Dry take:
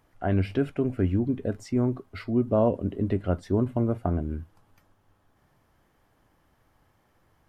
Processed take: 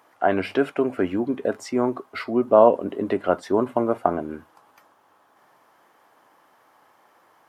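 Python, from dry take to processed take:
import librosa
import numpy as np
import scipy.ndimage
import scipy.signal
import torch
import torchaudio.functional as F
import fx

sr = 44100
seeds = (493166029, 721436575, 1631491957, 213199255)

y = scipy.signal.sosfilt(scipy.signal.butter(2, 360.0, 'highpass', fs=sr, output='sos'), x)
y = fx.peak_eq(y, sr, hz=1000.0, db=6.5, octaves=1.2)
y = y * librosa.db_to_amplitude(7.5)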